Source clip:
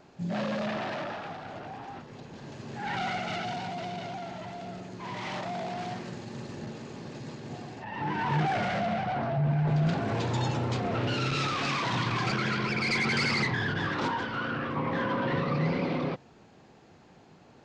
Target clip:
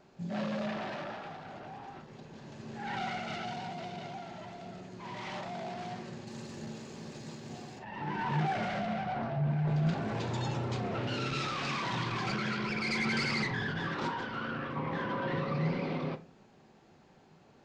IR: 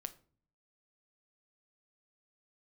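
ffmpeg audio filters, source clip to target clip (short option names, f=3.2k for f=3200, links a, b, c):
-filter_complex "[0:a]asettb=1/sr,asplit=3[a][b][c];[a]atrim=end=6.274[d];[b]atrim=start=6.27:end=7.79,asetpts=PTS-STARTPTS,afade=t=in:d=0.004:c=qsin,afade=t=out:st=1.516:d=0.004:c=qsin,aemphasis=mode=production:type=50kf[e];[c]atrim=start=7.786[f];[d][e]acrossfade=d=0.004:c1=hsin:c2=qsin[g];[g][f]acrossfade=d=0.004:c1=qsin:c2=hsin[h];[1:a]atrim=start_sample=2205,asetrate=52920,aresample=44100[i];[h][i]afir=irnorm=-1:irlink=0"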